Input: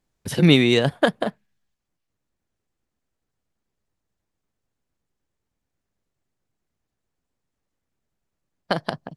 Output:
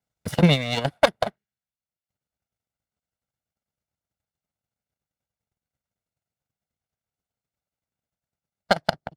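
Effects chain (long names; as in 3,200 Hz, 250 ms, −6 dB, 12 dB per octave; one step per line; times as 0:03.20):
lower of the sound and its delayed copy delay 1.4 ms
high-pass filter 69 Hz
transient designer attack +10 dB, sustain −6 dB
level −6.5 dB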